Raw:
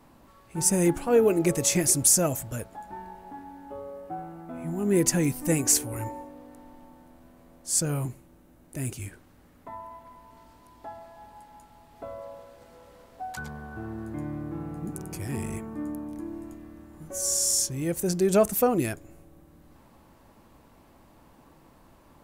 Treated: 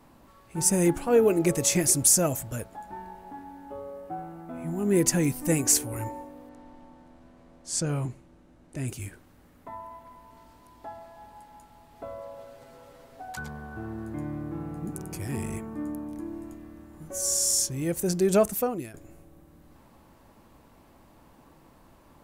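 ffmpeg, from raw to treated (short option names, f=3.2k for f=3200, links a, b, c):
-filter_complex "[0:a]asettb=1/sr,asplit=3[a][b][c];[a]atrim=end=6.494[d];[b]atrim=start=6.49:end=8.88,asetpts=PTS-STARTPTS,afade=t=in:d=0.004:c=qsin,afade=t=out:st=2.386:d=0.004:c=qsin,lowpass=6.6k[e];[c]atrim=start=8.876[f];[d][e]acrossfade=d=0.004:c1=hsin:c2=qsin[g];[g][f]acrossfade=d=0.004:c1=qsin:c2=hsin,asettb=1/sr,asplit=3[h][i][j];[h]atrim=end=12.374[k];[i]atrim=start=12.37:end=13.29,asetpts=PTS-STARTPTS,afade=t=in:d=0.004:c=qsin,afade=t=out:st=0.916:d=0.004:c=qsin,aecho=1:1:7.4:0.6,atrim=end_sample=40572[l];[j]atrim=start=13.286[m];[k][l]acrossfade=d=0.004:c1=hsin:c2=qsin[n];[n][m]acrossfade=d=0.004:c1=qsin:c2=hsin,asplit=2[o][p];[o]atrim=end=18.94,asetpts=PTS-STARTPTS,afade=t=out:st=18.35:d=0.59:silence=0.141254[q];[p]atrim=start=18.94,asetpts=PTS-STARTPTS,afade=t=in:d=0.004:c=hsin:silence=0.141254[r];[q][r]concat=n=2:v=0:a=1"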